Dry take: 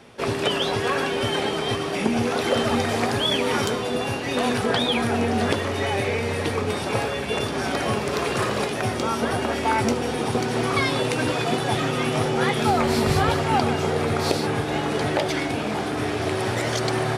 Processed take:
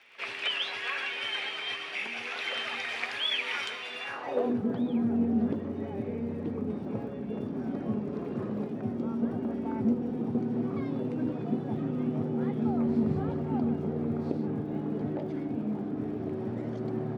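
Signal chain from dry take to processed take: pre-echo 85 ms -21 dB; band-pass sweep 2400 Hz -> 220 Hz, 4.02–4.58; crackle 63/s -55 dBFS

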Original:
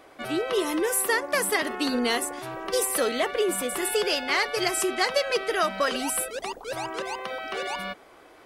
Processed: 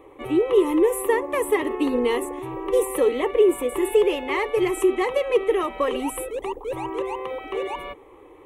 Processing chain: tilt shelf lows +8 dB, about 1100 Hz; fixed phaser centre 1000 Hz, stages 8; gain +3 dB

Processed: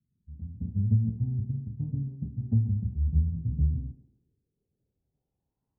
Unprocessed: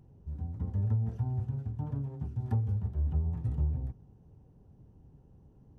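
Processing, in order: low-pass sweep 210 Hz -> 1000 Hz, 3.6–5.73; thinning echo 0.134 s, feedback 71%, high-pass 190 Hz, level -10 dB; three-band expander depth 100%

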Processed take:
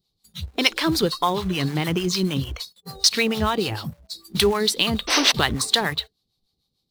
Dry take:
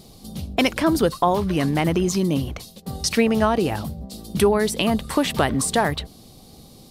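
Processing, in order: spectral noise reduction 26 dB; fifteen-band EQ 250 Hz -6 dB, 630 Hz -8 dB, 4000 Hz +11 dB, 10000 Hz -4 dB; in parallel at -4 dB: companded quantiser 4-bit; on the sum: painted sound noise, 5.07–5.32, 250–6300 Hz -17 dBFS; harmonic tremolo 6.7 Hz, depth 70%, crossover 580 Hz; gain -1 dB

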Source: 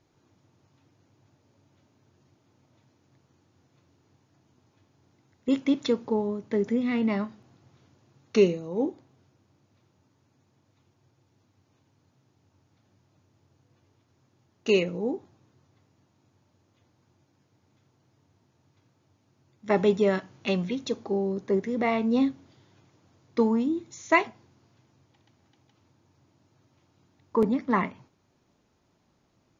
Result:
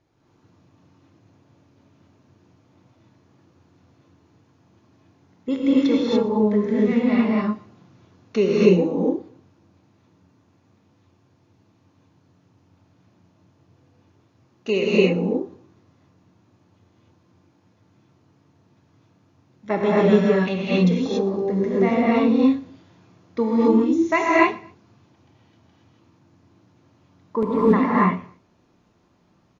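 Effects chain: high shelf 6100 Hz -11 dB; feedback echo 0.118 s, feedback 33%, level -22 dB; non-linear reverb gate 0.31 s rising, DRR -6.5 dB

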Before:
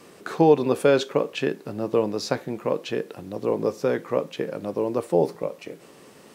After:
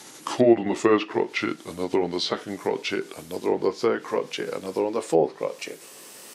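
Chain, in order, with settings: gliding pitch shift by -5 st ending unshifted; RIAA curve recording; treble ducked by the level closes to 1800 Hz, closed at -21 dBFS; gain +4.5 dB

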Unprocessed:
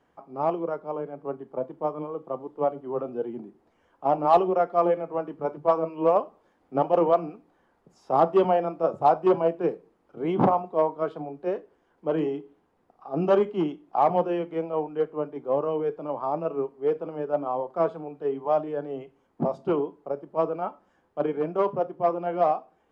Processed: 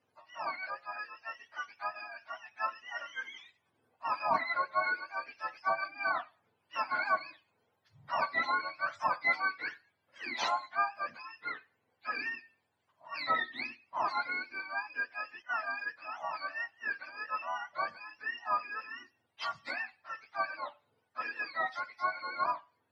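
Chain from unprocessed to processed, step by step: spectrum mirrored in octaves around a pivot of 870 Hz; 15.42–16.02 three-band expander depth 100%; gain -7 dB

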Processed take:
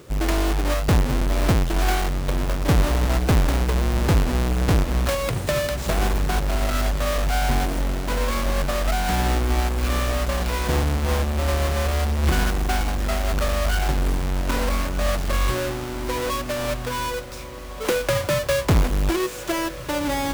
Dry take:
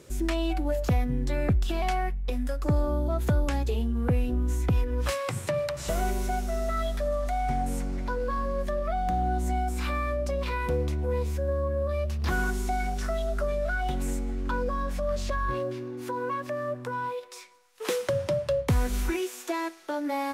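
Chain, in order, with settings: half-waves squared off; diffused feedback echo 1.497 s, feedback 56%, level -13 dB; gain +1.5 dB

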